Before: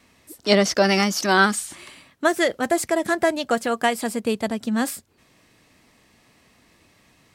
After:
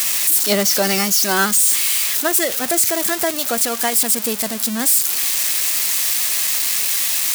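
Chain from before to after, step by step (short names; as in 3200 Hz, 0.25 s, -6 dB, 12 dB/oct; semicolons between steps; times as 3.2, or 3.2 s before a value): switching spikes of -8.5 dBFS; gain -1.5 dB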